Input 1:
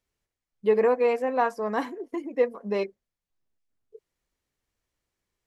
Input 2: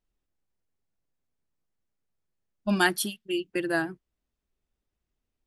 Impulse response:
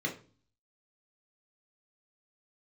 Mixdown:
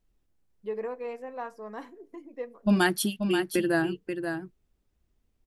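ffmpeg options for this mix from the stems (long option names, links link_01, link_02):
-filter_complex "[0:a]volume=-12.5dB,asplit=2[link_01][link_02];[link_02]volume=-21.5dB[link_03];[1:a]lowshelf=frequency=450:gain=7.5,volume=3dB,asplit=2[link_04][link_05];[link_05]volume=-10dB[link_06];[2:a]atrim=start_sample=2205[link_07];[link_03][link_07]afir=irnorm=-1:irlink=0[link_08];[link_06]aecho=0:1:533:1[link_09];[link_01][link_04][link_08][link_09]amix=inputs=4:normalize=0,acompressor=threshold=-29dB:ratio=1.5"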